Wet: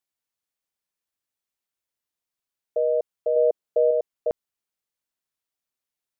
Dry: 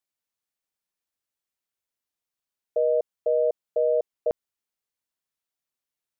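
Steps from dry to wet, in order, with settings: 3.36–3.91 s: peaking EQ 390 Hz +4.5 dB 1.6 oct

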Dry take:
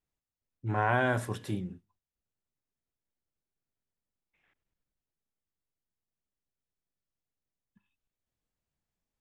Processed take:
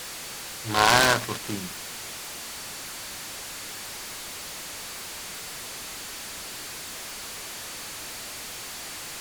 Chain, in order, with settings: tracing distortion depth 0.17 ms; peaking EQ 1.1 kHz +8 dB 0.77 oct; hysteresis with a dead band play -37.5 dBFS; frequency weighting D; whistle 4.5 kHz -38 dBFS; delay time shaken by noise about 2.4 kHz, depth 0.067 ms; trim +3.5 dB

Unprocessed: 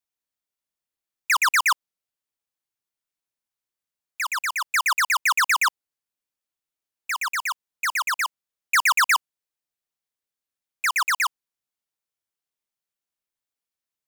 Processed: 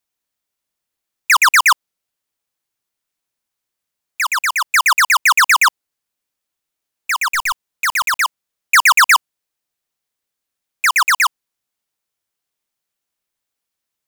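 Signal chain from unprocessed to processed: 7.34–8.22 s: block-companded coder 3-bit; trim +8.5 dB

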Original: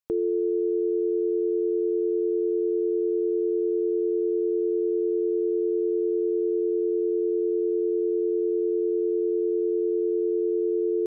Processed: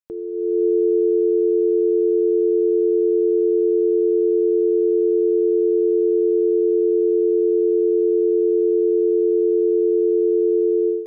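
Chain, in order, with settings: level rider gain up to 15.5 dB; reverberation RT60 2.7 s, pre-delay 8 ms, DRR 12.5 dB; trim -6 dB

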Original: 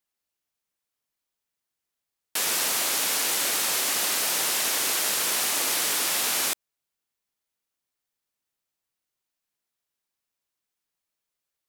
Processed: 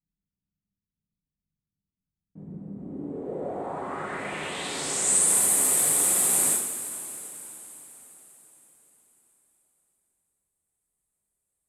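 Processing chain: FFT filter 100 Hz 0 dB, 5.7 kHz -25 dB, 8.3 kHz -2 dB, 13 kHz -19 dB; in parallel at -0.5 dB: peak limiter -32.5 dBFS, peak gain reduction 9 dB; on the sum: low-pass sweep 190 Hz -> 12 kHz, 2.70–5.38 s; two-slope reverb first 0.59 s, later 4.7 s, from -16 dB, DRR -7.5 dB; trim -1 dB

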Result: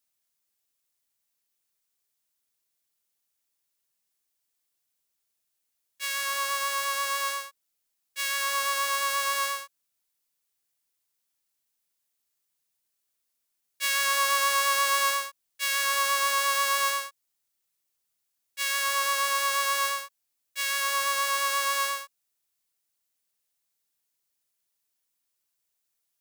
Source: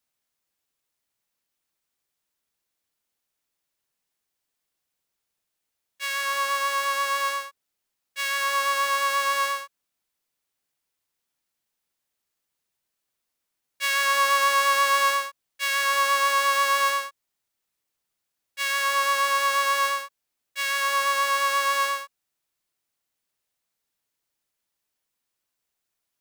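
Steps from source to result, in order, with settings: treble shelf 4.1 kHz +9.5 dB; trim -5.5 dB

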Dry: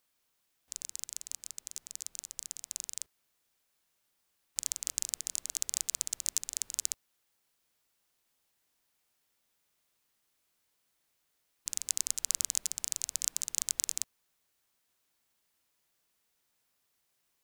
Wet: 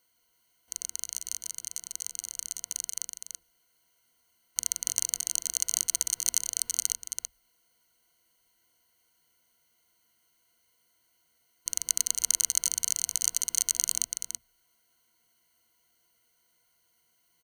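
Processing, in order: rippled EQ curve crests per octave 1.9, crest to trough 16 dB; on a send: delay 331 ms -6.5 dB; on the sum: trim +2.5 dB

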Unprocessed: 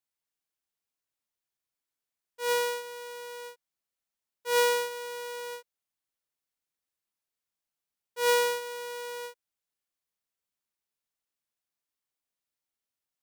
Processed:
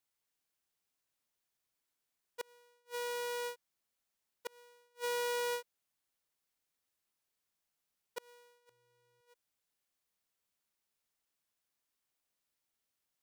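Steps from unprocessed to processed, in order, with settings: 8.69–9.21 s: octave divider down 2 oct, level +3 dB; inverted gate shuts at -33 dBFS, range -40 dB; trim +3 dB

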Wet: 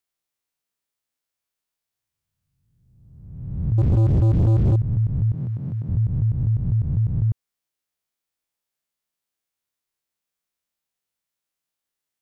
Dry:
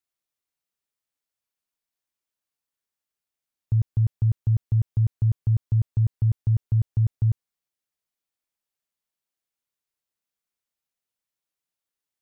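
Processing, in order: reverse spectral sustain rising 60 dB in 1.30 s; 3.78–4.76 s: waveshaping leveller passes 3; 5.34–5.89 s: high-pass 130 Hz 24 dB/octave

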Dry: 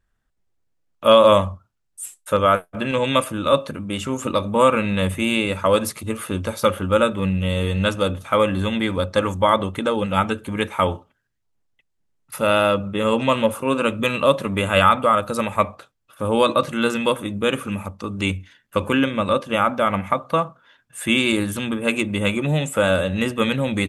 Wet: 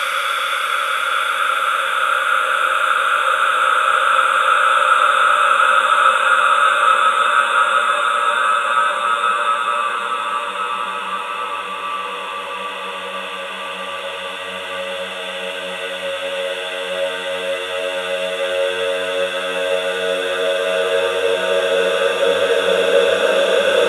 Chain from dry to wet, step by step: reverse spectral sustain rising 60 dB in 1.83 s; high-pass sweep 2.5 kHz -> 89 Hz, 6.42–9.21 s; Paulstretch 23×, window 0.50 s, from 6.72 s; trim +1 dB

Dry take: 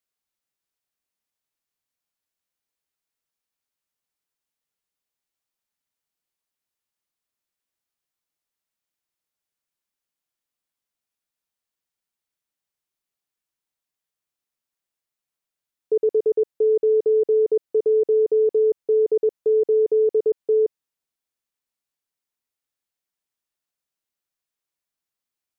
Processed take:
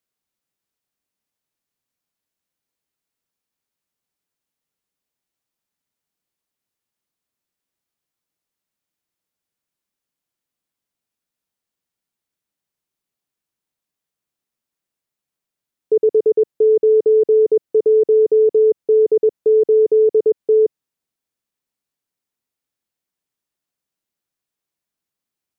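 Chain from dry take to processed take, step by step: peaking EQ 190 Hz +6.5 dB 2.7 oct; trim +1.5 dB

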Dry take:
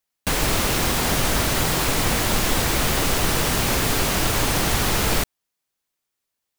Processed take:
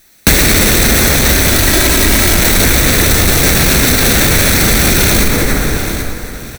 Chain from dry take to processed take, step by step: comb filter that takes the minimum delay 0.51 ms; 1.49–2.37 s: comb 3.1 ms, depth 68%; saturation -36.5 dBFS, distortion -4 dB; feedback delay 782 ms, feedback 30%, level -19 dB; plate-style reverb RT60 2.9 s, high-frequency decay 0.5×, DRR 2 dB; loudness maximiser +35.5 dB; trim -1 dB

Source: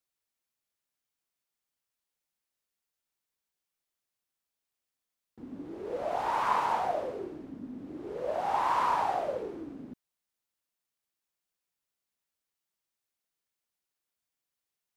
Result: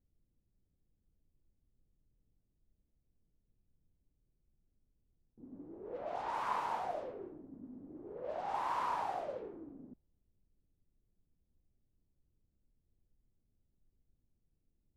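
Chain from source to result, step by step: added noise brown -66 dBFS; level-controlled noise filter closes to 360 Hz, open at -25.5 dBFS; trim -8.5 dB

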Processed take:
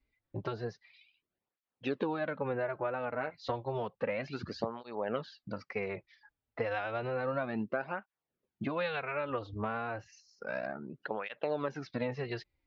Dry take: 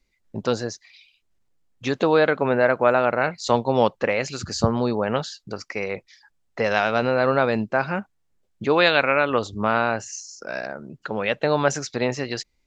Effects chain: Bessel low-pass 2.7 kHz, order 8; compression 6:1, threshold -24 dBFS, peak gain reduction 11.5 dB; cancelling through-zero flanger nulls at 0.31 Hz, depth 5.8 ms; trim -3.5 dB

